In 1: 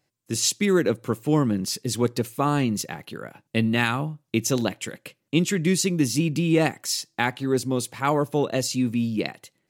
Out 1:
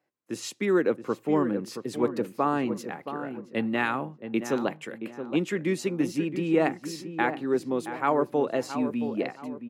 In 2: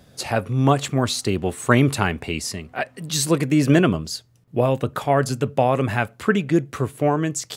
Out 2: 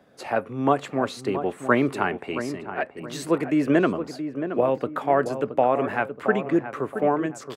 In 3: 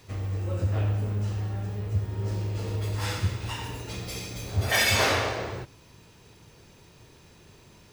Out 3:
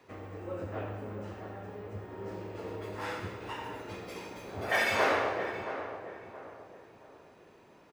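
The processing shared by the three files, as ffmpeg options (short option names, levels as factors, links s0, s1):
-filter_complex "[0:a]acrossover=split=220 2300:gain=0.112 1 0.178[s0][s1][s2];[s0][s1][s2]amix=inputs=3:normalize=0,asplit=2[s3][s4];[s4]adelay=673,lowpass=f=1400:p=1,volume=0.355,asplit=2[s5][s6];[s6]adelay=673,lowpass=f=1400:p=1,volume=0.39,asplit=2[s7][s8];[s8]adelay=673,lowpass=f=1400:p=1,volume=0.39,asplit=2[s9][s10];[s10]adelay=673,lowpass=f=1400:p=1,volume=0.39[s11];[s3][s5][s7][s9][s11]amix=inputs=5:normalize=0,volume=0.891"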